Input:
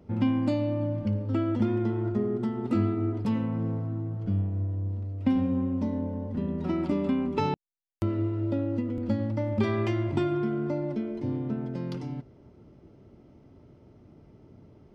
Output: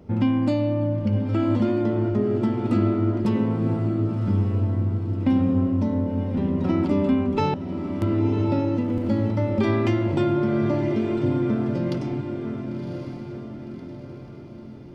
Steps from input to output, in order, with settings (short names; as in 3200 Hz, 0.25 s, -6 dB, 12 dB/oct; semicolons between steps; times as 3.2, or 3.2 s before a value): in parallel at 0 dB: limiter -22 dBFS, peak gain reduction 8 dB; on the sum: diffused feedback echo 1.077 s, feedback 48%, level -7 dB